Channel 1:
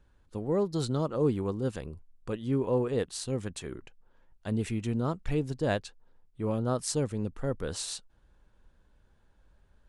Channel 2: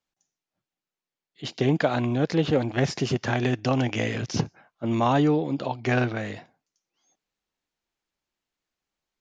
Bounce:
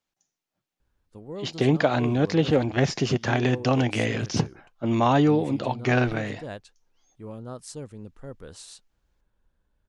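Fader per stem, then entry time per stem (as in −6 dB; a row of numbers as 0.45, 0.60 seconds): −8.5, +1.5 decibels; 0.80, 0.00 seconds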